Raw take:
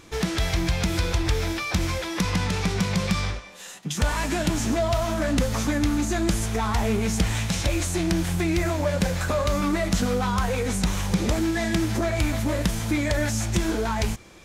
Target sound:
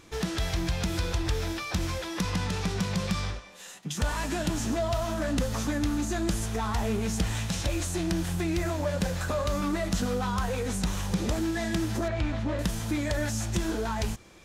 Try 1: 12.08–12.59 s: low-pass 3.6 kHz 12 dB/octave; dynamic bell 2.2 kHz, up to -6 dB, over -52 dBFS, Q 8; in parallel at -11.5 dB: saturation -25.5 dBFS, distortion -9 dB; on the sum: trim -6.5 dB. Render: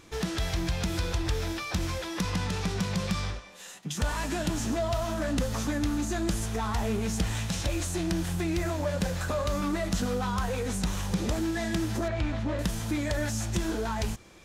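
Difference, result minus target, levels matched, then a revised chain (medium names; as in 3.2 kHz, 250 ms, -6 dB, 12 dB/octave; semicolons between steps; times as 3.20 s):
saturation: distortion +7 dB
12.08–12.59 s: low-pass 3.6 kHz 12 dB/octave; dynamic bell 2.2 kHz, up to -6 dB, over -52 dBFS, Q 8; in parallel at -11.5 dB: saturation -18 dBFS, distortion -17 dB; on the sum: trim -6.5 dB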